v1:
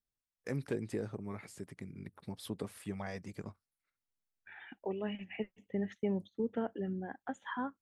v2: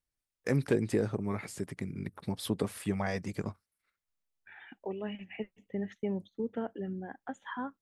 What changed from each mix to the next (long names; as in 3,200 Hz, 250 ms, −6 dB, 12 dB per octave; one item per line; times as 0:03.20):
first voice +8.5 dB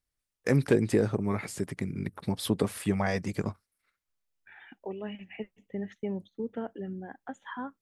first voice +4.5 dB